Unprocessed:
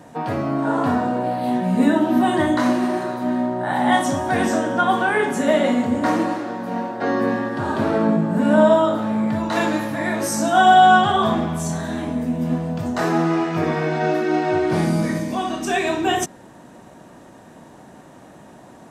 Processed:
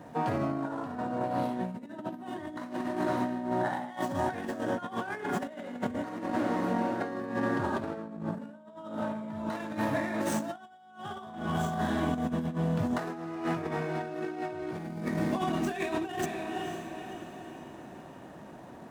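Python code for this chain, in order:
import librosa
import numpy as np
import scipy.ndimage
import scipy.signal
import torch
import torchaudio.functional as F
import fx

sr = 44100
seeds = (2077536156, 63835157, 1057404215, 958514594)

y = scipy.ndimage.median_filter(x, 9, mode='constant')
y = fx.echo_diffused(y, sr, ms=510, feedback_pct=47, wet_db=-12.0)
y = fx.over_compress(y, sr, threshold_db=-24.0, ratio=-0.5)
y = y * librosa.db_to_amplitude(-8.5)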